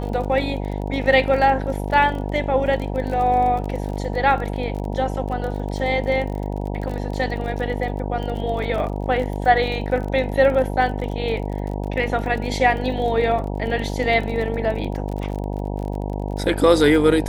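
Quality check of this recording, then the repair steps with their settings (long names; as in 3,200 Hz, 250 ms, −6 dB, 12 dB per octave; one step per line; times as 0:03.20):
mains buzz 50 Hz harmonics 19 −26 dBFS
surface crackle 34 per second −29 dBFS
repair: click removal
hum removal 50 Hz, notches 19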